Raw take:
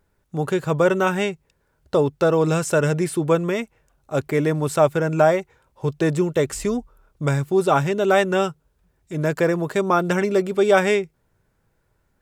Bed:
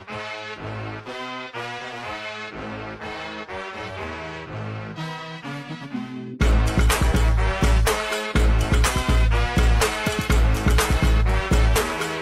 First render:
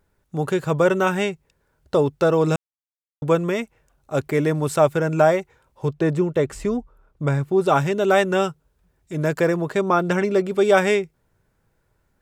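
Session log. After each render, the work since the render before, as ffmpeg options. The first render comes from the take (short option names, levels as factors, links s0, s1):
-filter_complex "[0:a]asettb=1/sr,asplit=3[s0][s1][s2];[s0]atrim=end=5.884[s3];[s1]atrim=start=5.88:end=7.66,asetpts=PTS-STARTPTS,afade=t=in:d=0.004:c=qsin,afade=t=out:st=1.776:d=0.004:c=qsin,highshelf=f=3400:g=-11[s4];[s2]atrim=start=7.656[s5];[s3][s4]acrossfade=d=0.004:c1=hsin:c2=qsin[s6];[s6][s5]acrossfade=d=0.004:c1=qsin:c2=hsin,asettb=1/sr,asplit=3[s7][s8][s9];[s7]atrim=end=9.564[s10];[s8]atrim=start=9.56:end=10.51,asetpts=PTS-STARTPTS,afade=t=in:d=0.004:c=qsin,afade=t=out:st=0.946:d=0.004:c=qsin,highshelf=f=7400:g=-8[s11];[s9]atrim=start=10.506[s12];[s10][s11]acrossfade=d=0.004:c1=hsin:c2=qsin[s13];[s13][s12]acrossfade=d=0.004:c1=qsin:c2=hsin,asplit=3[s14][s15][s16];[s14]atrim=end=2.56,asetpts=PTS-STARTPTS,afade=t=out:st=2.556:d=0.004:c=hsin[s17];[s15]atrim=start=2.56:end=3.22,asetpts=PTS-STARTPTS,volume=0[s18];[s16]atrim=start=3.22,asetpts=PTS-STARTPTS,afade=t=in:d=0.004:c=hsin[s19];[s17][s18][s19]concat=n=3:v=0:a=1"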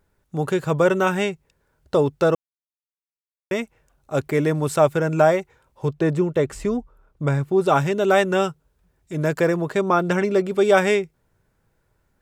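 -filter_complex "[0:a]asplit=3[s0][s1][s2];[s0]atrim=end=2.35,asetpts=PTS-STARTPTS,afade=t=out:st=2.346:d=0.004:c=hsin[s3];[s1]atrim=start=2.35:end=3.51,asetpts=PTS-STARTPTS,volume=0[s4];[s2]atrim=start=3.51,asetpts=PTS-STARTPTS,afade=t=in:d=0.004:c=hsin[s5];[s3][s4][s5]concat=n=3:v=0:a=1"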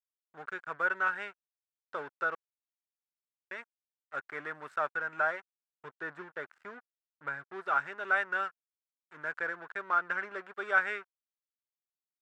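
-af "aeval=exprs='sgn(val(0))*max(abs(val(0))-0.0251,0)':c=same,bandpass=f=1500:t=q:w=4.6:csg=0"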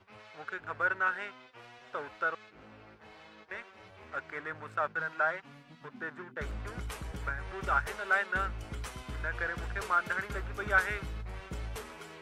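-filter_complex "[1:a]volume=0.0841[s0];[0:a][s0]amix=inputs=2:normalize=0"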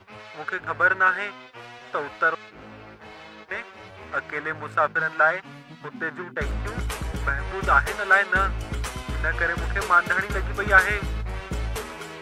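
-af "volume=3.35"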